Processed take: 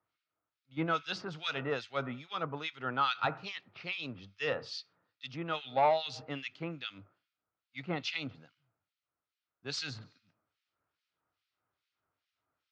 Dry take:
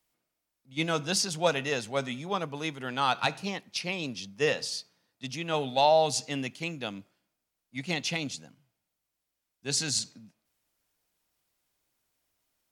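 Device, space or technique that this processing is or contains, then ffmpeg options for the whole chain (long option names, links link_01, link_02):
guitar amplifier with harmonic tremolo: -filter_complex "[0:a]acrossover=split=1800[link_01][link_02];[link_01]aeval=exprs='val(0)*(1-1/2+1/2*cos(2*PI*2.4*n/s))':channel_layout=same[link_03];[link_02]aeval=exprs='val(0)*(1-1/2-1/2*cos(2*PI*2.4*n/s))':channel_layout=same[link_04];[link_03][link_04]amix=inputs=2:normalize=0,asoftclip=type=tanh:threshold=-20dB,highpass=90,equalizer=frequency=98:width_type=q:width=4:gain=8,equalizer=frequency=210:width_type=q:width=4:gain=-8,equalizer=frequency=1300:width_type=q:width=4:gain=10,lowpass=frequency=4400:width=0.5412,lowpass=frequency=4400:width=1.3066"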